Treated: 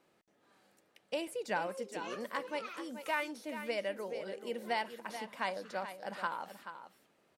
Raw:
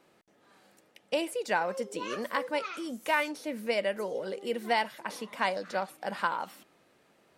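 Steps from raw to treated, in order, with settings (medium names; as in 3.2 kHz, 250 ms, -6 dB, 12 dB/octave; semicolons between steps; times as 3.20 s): 1.27–1.67 s: bass shelf 190 Hz +10 dB; delay 431 ms -10.5 dB; trim -7 dB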